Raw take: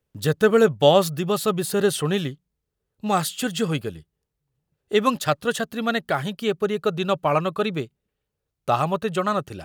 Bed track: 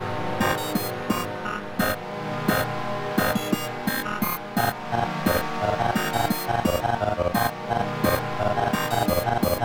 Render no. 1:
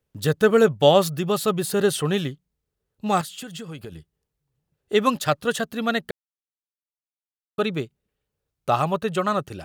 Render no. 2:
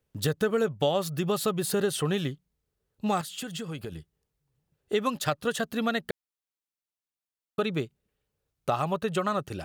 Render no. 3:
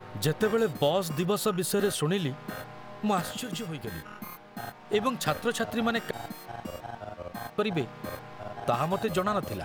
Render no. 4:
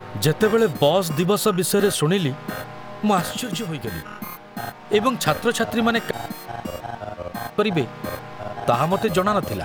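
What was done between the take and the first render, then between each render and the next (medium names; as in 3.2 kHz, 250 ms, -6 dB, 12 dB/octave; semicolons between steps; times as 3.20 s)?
3.21–3.92 s: compression 12:1, threshold -32 dBFS; 6.11–7.58 s: mute
compression 4:1, threshold -24 dBFS, peak gain reduction 12 dB
add bed track -16 dB
trim +8 dB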